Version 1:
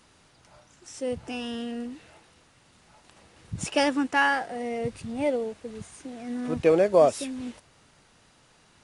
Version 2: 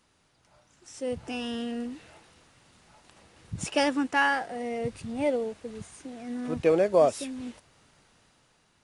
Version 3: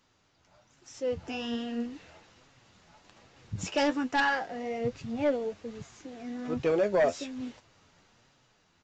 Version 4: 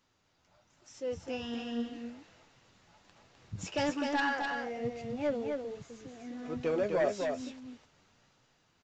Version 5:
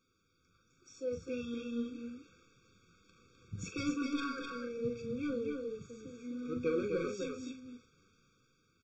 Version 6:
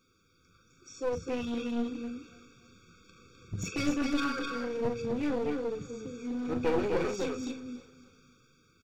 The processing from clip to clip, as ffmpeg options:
-af "dynaudnorm=f=210:g=9:m=9dB,volume=-8.5dB"
-af "flanger=delay=6.9:depth=5.1:regen=46:speed=1.2:shape=triangular,aresample=16000,aeval=exprs='0.237*sin(PI/2*2*val(0)/0.237)':c=same,aresample=44100,volume=-7dB"
-af "aecho=1:1:255:0.596,volume=-5dB"
-filter_complex "[0:a]bandreject=f=60:t=h:w=6,bandreject=f=120:t=h:w=6,asplit=2[a][b];[b]adelay=41,volume=-8dB[c];[a][c]amix=inputs=2:normalize=0,afftfilt=real='re*eq(mod(floor(b*sr/1024/540),2),0)':imag='im*eq(mod(floor(b*sr/1024/540),2),0)':win_size=1024:overlap=0.75,volume=-1dB"
-af "aeval=exprs='clip(val(0),-1,0.0106)':c=same,aecho=1:1:283|566|849:0.106|0.0434|0.0178,volume=7.5dB"

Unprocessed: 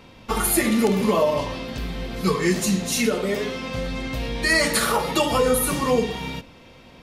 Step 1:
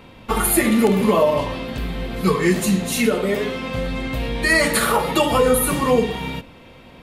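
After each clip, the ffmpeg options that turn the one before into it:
-af "equalizer=f=5.6k:t=o:w=0.73:g=-8.5,volume=3.5dB"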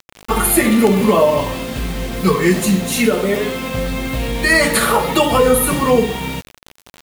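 -af "acrusher=bits=5:mix=0:aa=0.000001,volume=3.5dB"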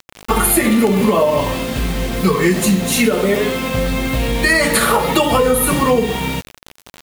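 -af "acompressor=threshold=-13dB:ratio=6,volume=3dB"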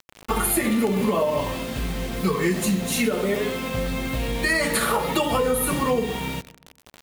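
-filter_complex "[0:a]asplit=2[a][b];[b]adelay=131,lowpass=f=960:p=1,volume=-19.5dB,asplit=2[c][d];[d]adelay=131,lowpass=f=960:p=1,volume=0.43,asplit=2[e][f];[f]adelay=131,lowpass=f=960:p=1,volume=0.43[g];[a][c][e][g]amix=inputs=4:normalize=0,volume=-8dB"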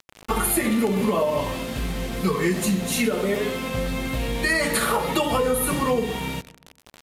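-af "aresample=32000,aresample=44100"

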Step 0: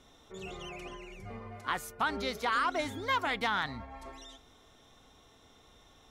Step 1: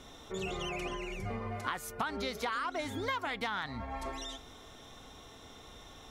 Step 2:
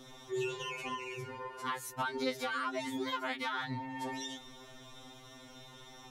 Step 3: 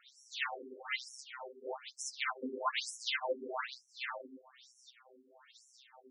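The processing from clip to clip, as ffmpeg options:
-af "acompressor=threshold=-41dB:ratio=6,volume=8dB"
-af "afftfilt=real='re*2.45*eq(mod(b,6),0)':imag='im*2.45*eq(mod(b,6),0)':win_size=2048:overlap=0.75,volume=2dB"
-af "aeval=exprs='0.0794*(cos(1*acos(clip(val(0)/0.0794,-1,1)))-cos(1*PI/2))+0.00708*(cos(3*acos(clip(val(0)/0.0794,-1,1)))-cos(3*PI/2))+0.0112*(cos(7*acos(clip(val(0)/0.0794,-1,1)))-cos(7*PI/2))+0.01*(cos(8*acos(clip(val(0)/0.0794,-1,1)))-cos(8*PI/2))':c=same,aphaser=in_gain=1:out_gain=1:delay=3.8:decay=0.21:speed=1.8:type=sinusoidal,afftfilt=real='re*between(b*sr/1024,320*pow(7800/320,0.5+0.5*sin(2*PI*1.1*pts/sr))/1.41,320*pow(7800/320,0.5+0.5*sin(2*PI*1.1*pts/sr))*1.41)':imag='im*between(b*sr/1024,320*pow(7800/320,0.5+0.5*sin(2*PI*1.1*pts/sr))/1.41,320*pow(7800/320,0.5+0.5*sin(2*PI*1.1*pts/sr))*1.41)':win_size=1024:overlap=0.75,volume=10.5dB"

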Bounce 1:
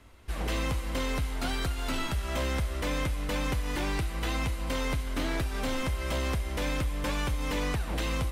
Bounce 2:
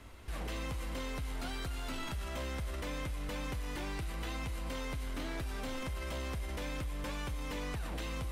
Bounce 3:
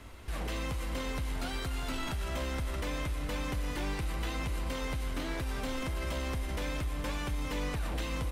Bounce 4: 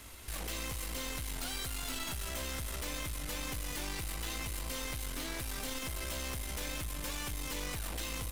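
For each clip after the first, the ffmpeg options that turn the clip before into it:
-af "alimiter=level_in=11dB:limit=-24dB:level=0:latency=1:release=12,volume=-11dB,volume=2.5dB"
-filter_complex "[0:a]asplit=2[a][b];[b]adelay=641.4,volume=-10dB,highshelf=f=4k:g=-14.4[c];[a][c]amix=inputs=2:normalize=0,volume=3.5dB"
-af "crystalizer=i=4.5:c=0,aeval=exprs='(tanh(39.8*val(0)+0.45)-tanh(0.45))/39.8':c=same,volume=-2.5dB"

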